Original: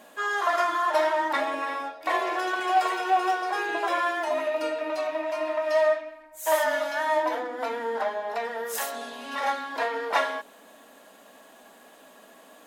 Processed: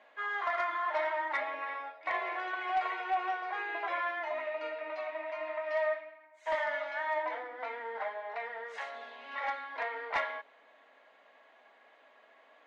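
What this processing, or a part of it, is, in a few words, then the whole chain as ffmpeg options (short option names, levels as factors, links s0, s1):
megaphone: -af "highpass=530,lowpass=3100,equalizer=f=2100:t=o:w=0.23:g=11,bandreject=f=5200:w=23,asoftclip=type=hard:threshold=0.168,lowpass=5700,volume=0.398"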